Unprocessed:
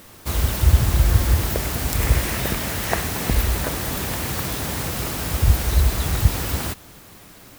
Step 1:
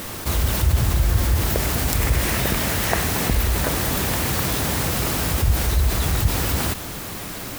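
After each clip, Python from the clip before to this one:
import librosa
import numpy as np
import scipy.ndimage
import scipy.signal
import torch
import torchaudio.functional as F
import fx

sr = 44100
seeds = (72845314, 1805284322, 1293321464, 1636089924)

y = fx.env_flatten(x, sr, amount_pct=50)
y = F.gain(torch.from_numpy(y), -5.0).numpy()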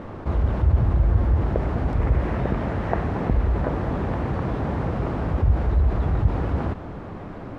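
y = scipy.signal.sosfilt(scipy.signal.butter(2, 1000.0, 'lowpass', fs=sr, output='sos'), x)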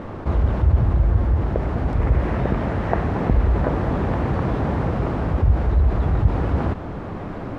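y = fx.rider(x, sr, range_db=4, speed_s=2.0)
y = F.gain(torch.from_numpy(y), 2.0).numpy()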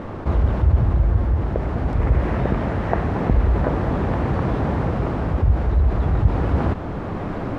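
y = fx.rider(x, sr, range_db=5, speed_s=2.0)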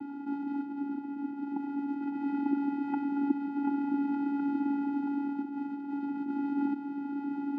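y = fx.vocoder(x, sr, bands=8, carrier='square', carrier_hz=282.0)
y = F.gain(torch.from_numpy(y), -7.5).numpy()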